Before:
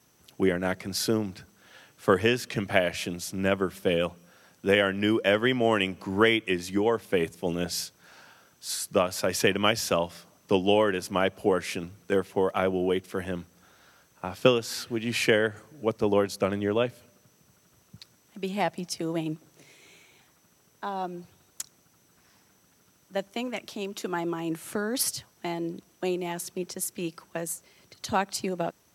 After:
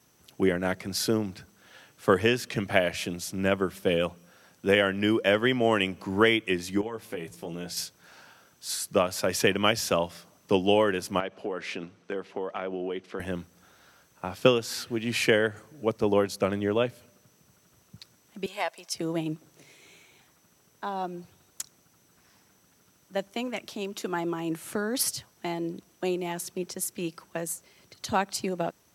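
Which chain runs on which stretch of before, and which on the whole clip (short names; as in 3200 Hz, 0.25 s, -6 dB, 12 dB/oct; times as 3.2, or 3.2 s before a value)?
6.81–7.77 compressor 3:1, threshold -35 dBFS + doubler 18 ms -6 dB
11.2–13.2 BPF 200–4300 Hz + compressor 4:1, threshold -29 dBFS
18.46–18.95 HPF 690 Hz + comb 1.9 ms, depth 32%
whole clip: dry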